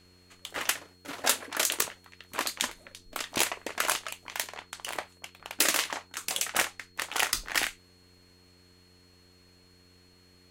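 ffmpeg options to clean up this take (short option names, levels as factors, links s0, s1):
-af "adeclick=t=4,bandreject=f=90.1:t=h:w=4,bandreject=f=180.2:t=h:w=4,bandreject=f=270.3:t=h:w=4,bandreject=f=360.4:t=h:w=4,bandreject=f=450.5:t=h:w=4,bandreject=f=4300:w=30"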